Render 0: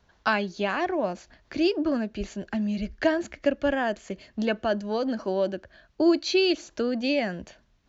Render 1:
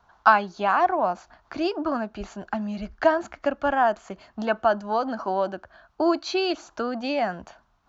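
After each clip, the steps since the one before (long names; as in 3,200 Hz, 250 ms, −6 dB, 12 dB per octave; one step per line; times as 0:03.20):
flat-topped bell 1,000 Hz +13.5 dB 1.3 octaves
level −3 dB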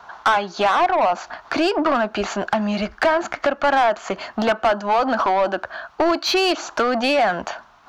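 downward compressor 3 to 1, threshold −30 dBFS, peak gain reduction 14 dB
mid-hump overdrive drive 22 dB, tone 3,700 Hz, clips at −13 dBFS
level +5 dB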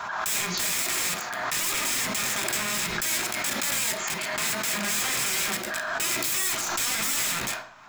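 wrap-around overflow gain 24 dB
convolution reverb RT60 0.50 s, pre-delay 3 ms, DRR 2.5 dB
background raised ahead of every attack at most 27 dB per second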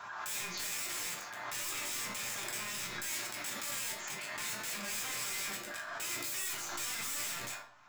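resonators tuned to a chord G2 minor, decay 0.25 s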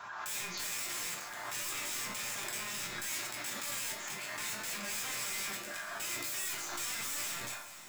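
feedback delay with all-pass diffusion 474 ms, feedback 60%, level −14 dB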